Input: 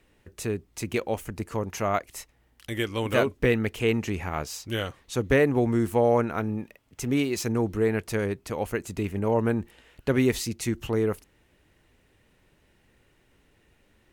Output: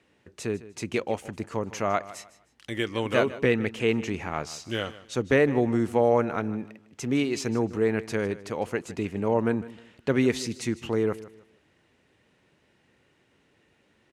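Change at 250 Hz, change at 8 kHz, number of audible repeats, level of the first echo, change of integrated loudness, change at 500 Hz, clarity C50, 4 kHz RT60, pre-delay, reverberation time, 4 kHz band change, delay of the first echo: 0.0 dB, −3.0 dB, 2, −17.0 dB, −0.5 dB, 0.0 dB, no reverb audible, no reverb audible, no reverb audible, no reverb audible, 0.0 dB, 154 ms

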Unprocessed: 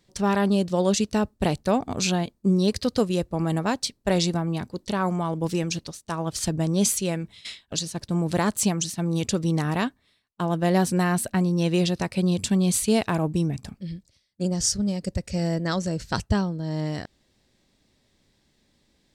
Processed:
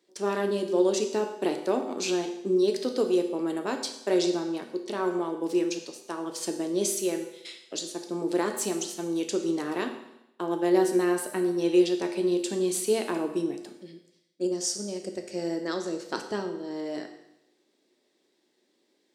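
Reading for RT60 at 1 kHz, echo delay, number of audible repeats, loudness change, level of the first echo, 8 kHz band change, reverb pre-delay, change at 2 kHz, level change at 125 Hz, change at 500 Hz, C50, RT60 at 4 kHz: 0.85 s, no echo audible, no echo audible, −3.5 dB, no echo audible, −5.5 dB, 8 ms, −5.0 dB, −18.0 dB, +1.5 dB, 8.0 dB, 0.85 s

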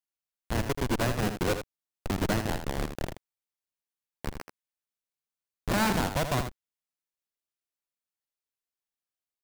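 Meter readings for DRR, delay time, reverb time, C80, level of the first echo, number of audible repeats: no reverb audible, 81 ms, no reverb audible, no reverb audible, −8.5 dB, 1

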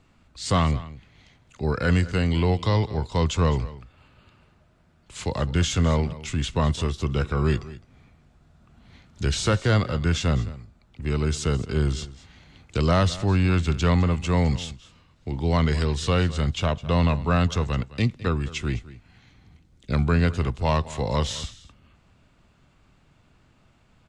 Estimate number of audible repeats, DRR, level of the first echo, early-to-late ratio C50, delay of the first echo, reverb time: 1, no reverb audible, −17.5 dB, no reverb audible, 210 ms, no reverb audible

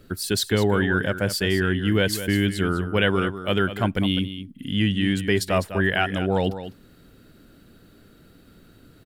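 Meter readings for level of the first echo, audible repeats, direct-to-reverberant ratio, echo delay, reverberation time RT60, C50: −11.5 dB, 1, no reverb audible, 203 ms, no reverb audible, no reverb audible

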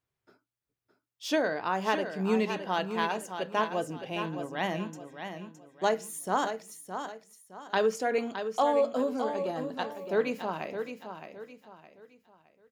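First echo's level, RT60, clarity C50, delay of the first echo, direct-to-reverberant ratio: −8.5 dB, no reverb audible, no reverb audible, 615 ms, no reverb audible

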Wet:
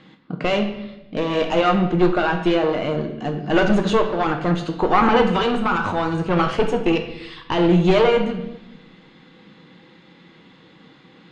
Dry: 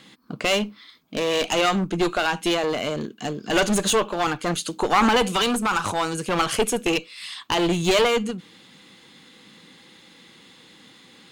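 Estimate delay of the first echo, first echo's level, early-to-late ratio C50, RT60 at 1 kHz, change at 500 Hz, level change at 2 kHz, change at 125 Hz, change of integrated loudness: no echo audible, no echo audible, 8.0 dB, 0.90 s, +4.0 dB, 0.0 dB, +7.5 dB, +3.0 dB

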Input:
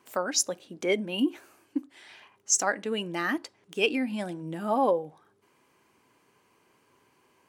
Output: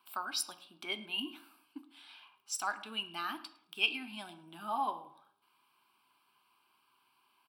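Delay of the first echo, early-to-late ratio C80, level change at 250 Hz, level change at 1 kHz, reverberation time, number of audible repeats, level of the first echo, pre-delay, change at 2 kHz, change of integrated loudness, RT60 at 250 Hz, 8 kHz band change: 108 ms, 16.0 dB, −17.0 dB, −6.0 dB, 0.65 s, 1, −21.5 dB, 8 ms, −6.0 dB, −8.5 dB, 0.65 s, −14.5 dB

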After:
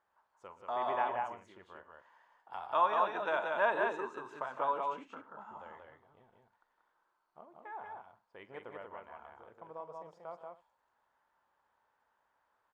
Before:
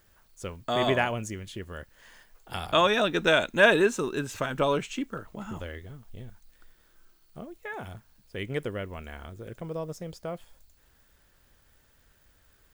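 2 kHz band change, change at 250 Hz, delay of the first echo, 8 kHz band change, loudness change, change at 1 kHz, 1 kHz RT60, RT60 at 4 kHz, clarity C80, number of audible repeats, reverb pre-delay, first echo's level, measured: −12.0 dB, −19.5 dB, 44 ms, below −25 dB, −7.5 dB, −2.0 dB, no reverb audible, no reverb audible, no reverb audible, 4, no reverb audible, −15.0 dB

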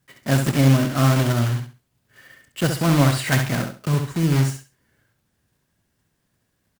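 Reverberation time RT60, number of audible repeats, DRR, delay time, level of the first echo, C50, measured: no reverb audible, 3, no reverb audible, 67 ms, −6.5 dB, no reverb audible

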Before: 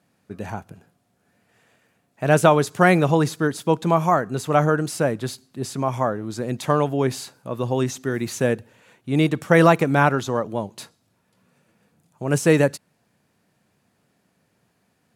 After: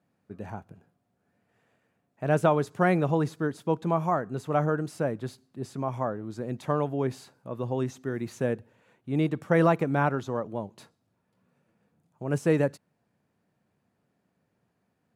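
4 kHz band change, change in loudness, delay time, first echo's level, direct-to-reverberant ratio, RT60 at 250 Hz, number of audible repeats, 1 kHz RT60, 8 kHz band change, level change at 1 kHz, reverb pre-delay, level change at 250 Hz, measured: −14.0 dB, −7.0 dB, no echo audible, no echo audible, no reverb audible, no reverb audible, no echo audible, no reverb audible, −16.0 dB, −8.0 dB, no reverb audible, −6.5 dB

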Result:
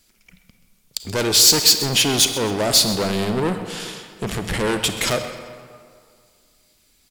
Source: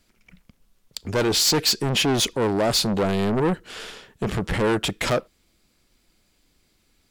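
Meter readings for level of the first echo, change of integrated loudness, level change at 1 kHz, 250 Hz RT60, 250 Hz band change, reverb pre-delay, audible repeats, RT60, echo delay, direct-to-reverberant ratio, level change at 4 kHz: −15.0 dB, +5.0 dB, +0.5 dB, 1.9 s, 0.0 dB, 33 ms, 1, 2.1 s, 130 ms, 7.0 dB, +6.5 dB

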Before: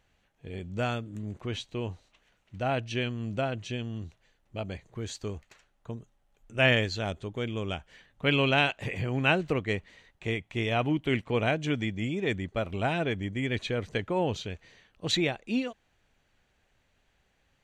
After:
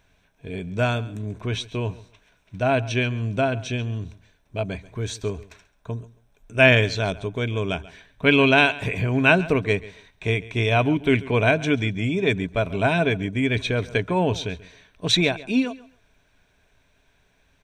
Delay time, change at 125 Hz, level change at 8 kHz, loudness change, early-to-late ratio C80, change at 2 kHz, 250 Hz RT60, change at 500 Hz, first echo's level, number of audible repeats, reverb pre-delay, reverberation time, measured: 137 ms, +8.0 dB, +7.0 dB, +8.0 dB, no reverb audible, +8.5 dB, no reverb audible, +8.0 dB, −19.0 dB, 2, no reverb audible, no reverb audible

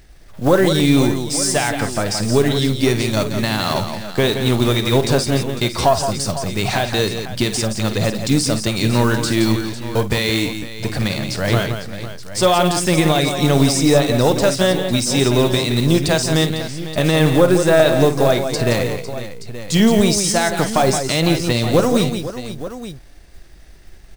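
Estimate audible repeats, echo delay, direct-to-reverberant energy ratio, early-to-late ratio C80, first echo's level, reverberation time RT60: 4, 50 ms, no reverb audible, no reverb audible, −12.5 dB, no reverb audible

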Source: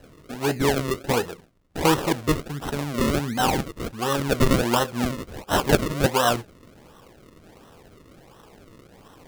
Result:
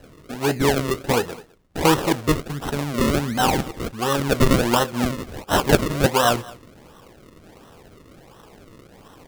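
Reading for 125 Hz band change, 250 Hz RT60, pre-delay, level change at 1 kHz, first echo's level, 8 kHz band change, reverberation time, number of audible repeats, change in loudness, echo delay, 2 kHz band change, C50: +2.5 dB, no reverb audible, no reverb audible, +2.5 dB, −21.5 dB, +2.5 dB, no reverb audible, 1, +2.5 dB, 208 ms, +2.5 dB, no reverb audible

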